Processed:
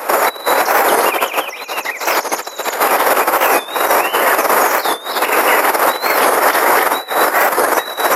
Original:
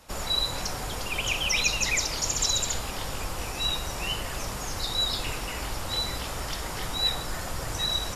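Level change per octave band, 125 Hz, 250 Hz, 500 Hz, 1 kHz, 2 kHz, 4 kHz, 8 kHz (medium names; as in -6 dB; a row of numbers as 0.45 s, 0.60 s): under -10 dB, +14.5 dB, +23.0 dB, +23.5 dB, +17.5 dB, +3.5 dB, +7.5 dB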